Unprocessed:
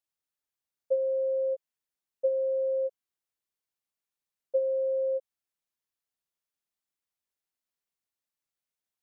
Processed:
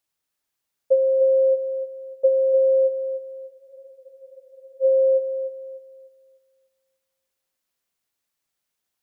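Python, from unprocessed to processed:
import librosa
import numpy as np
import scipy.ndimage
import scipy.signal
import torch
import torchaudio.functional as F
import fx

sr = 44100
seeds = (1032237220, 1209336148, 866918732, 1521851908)

y = fx.echo_thinned(x, sr, ms=298, feedback_pct=41, hz=400.0, wet_db=-7.5)
y = fx.spec_freeze(y, sr, seeds[0], at_s=3.53, hold_s=1.29)
y = y * 10.0 ** (9.0 / 20.0)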